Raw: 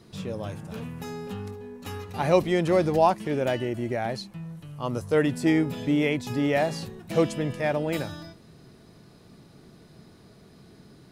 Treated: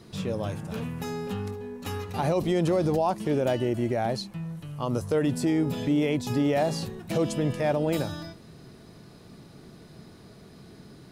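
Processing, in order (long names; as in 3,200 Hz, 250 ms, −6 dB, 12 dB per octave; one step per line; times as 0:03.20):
dynamic equaliser 2,000 Hz, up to −7 dB, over −44 dBFS, Q 1.3
brickwall limiter −19.5 dBFS, peak gain reduction 12.5 dB
level +3 dB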